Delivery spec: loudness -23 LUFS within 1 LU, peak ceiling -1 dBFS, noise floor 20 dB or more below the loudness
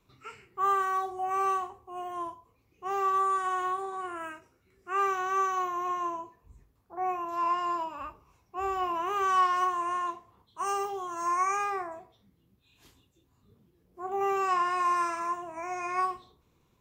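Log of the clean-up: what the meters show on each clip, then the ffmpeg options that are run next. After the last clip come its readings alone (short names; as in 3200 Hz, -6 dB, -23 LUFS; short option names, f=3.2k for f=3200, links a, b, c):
loudness -30.0 LUFS; peak -16.0 dBFS; loudness target -23.0 LUFS
-> -af "volume=7dB"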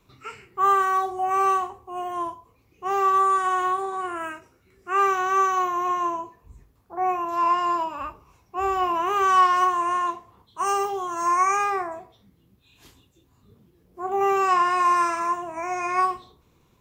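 loudness -23.0 LUFS; peak -9.0 dBFS; noise floor -63 dBFS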